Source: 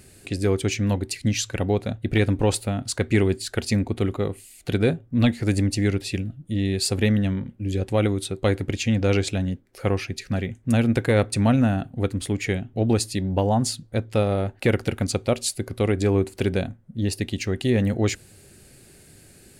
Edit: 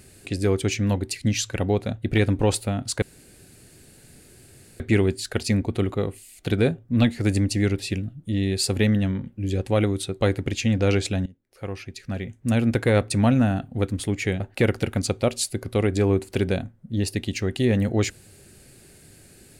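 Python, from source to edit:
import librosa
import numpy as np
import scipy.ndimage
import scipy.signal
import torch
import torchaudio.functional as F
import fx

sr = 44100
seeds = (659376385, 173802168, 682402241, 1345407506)

y = fx.edit(x, sr, fx.insert_room_tone(at_s=3.02, length_s=1.78),
    fx.fade_in_from(start_s=9.48, length_s=1.55, floor_db=-21.0),
    fx.cut(start_s=12.62, length_s=1.83), tone=tone)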